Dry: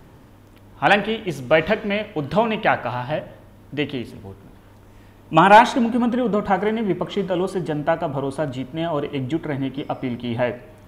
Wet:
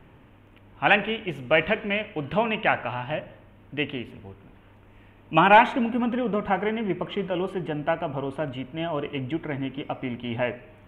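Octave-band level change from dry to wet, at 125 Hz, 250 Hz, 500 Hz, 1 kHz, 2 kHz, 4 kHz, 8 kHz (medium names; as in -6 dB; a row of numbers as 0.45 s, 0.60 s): -5.5 dB, -5.5 dB, -5.5 dB, -5.0 dB, -2.0 dB, -3.0 dB, under -15 dB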